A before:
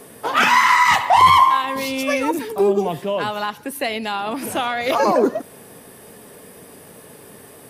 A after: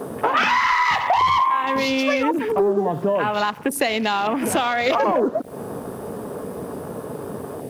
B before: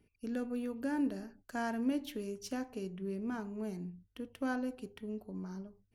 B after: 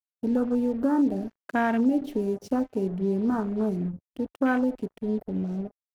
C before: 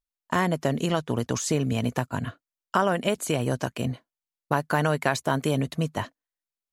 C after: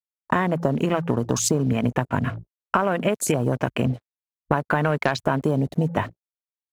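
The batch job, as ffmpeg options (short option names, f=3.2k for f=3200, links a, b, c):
-af "acontrast=47,bandreject=f=56:t=h:w=4,bandreject=f=112:t=h:w=4,bandreject=f=168:t=h:w=4,acompressor=threshold=-26dB:ratio=5,acrusher=bits=6:mix=0:aa=0.5,afwtdn=0.0112,volume=7.5dB"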